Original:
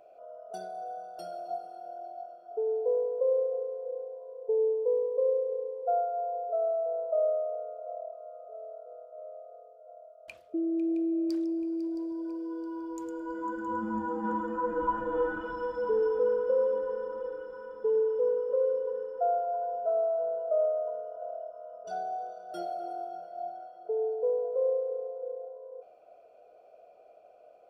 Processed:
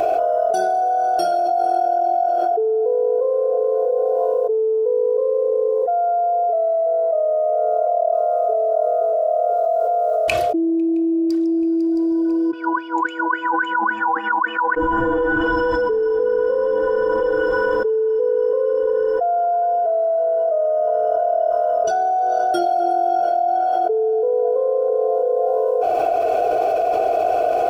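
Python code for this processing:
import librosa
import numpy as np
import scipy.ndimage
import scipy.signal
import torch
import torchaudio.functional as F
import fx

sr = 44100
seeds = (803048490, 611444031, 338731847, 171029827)

y = fx.echo_throw(x, sr, start_s=8.23, length_s=0.91, ms=520, feedback_pct=50, wet_db=-4.5)
y = fx.wah_lfo(y, sr, hz=3.6, low_hz=800.0, high_hz=2800.0, q=19.0, at=(12.5, 14.76), fade=0.02)
y = fx.peak_eq(y, sr, hz=130.0, db=8.5, octaves=0.72)
y = y + 0.77 * np.pad(y, (int(2.7 * sr / 1000.0), 0))[:len(y)]
y = fx.env_flatten(y, sr, amount_pct=100)
y = y * librosa.db_to_amplitude(2.5)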